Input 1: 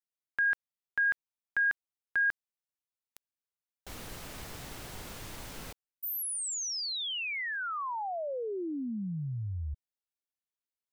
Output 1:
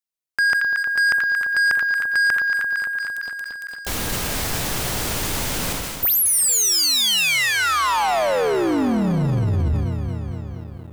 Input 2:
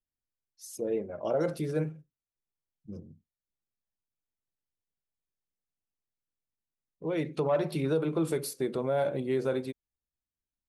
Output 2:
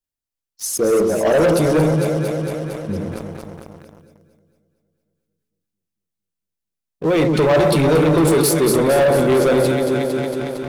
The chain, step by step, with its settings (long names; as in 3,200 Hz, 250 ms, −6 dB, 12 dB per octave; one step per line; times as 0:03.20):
high-shelf EQ 3,700 Hz +4.5 dB
on a send: delay that swaps between a low-pass and a high-pass 114 ms, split 1,100 Hz, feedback 83%, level −6 dB
on the sum: dynamic equaliser 1,700 Hz, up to −4 dB, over −48 dBFS, Q 7
leveller curve on the samples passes 3
level that may fall only so fast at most 28 dB per second
level +6 dB